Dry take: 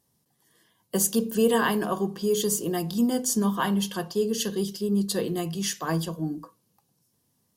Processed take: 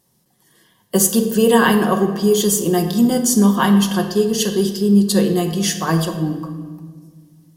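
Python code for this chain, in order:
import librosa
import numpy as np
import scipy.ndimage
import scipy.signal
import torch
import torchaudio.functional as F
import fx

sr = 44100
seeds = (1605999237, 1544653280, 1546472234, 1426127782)

y = fx.room_shoebox(x, sr, seeds[0], volume_m3=2000.0, walls='mixed', distance_m=1.0)
y = F.gain(torch.from_numpy(y), 8.0).numpy()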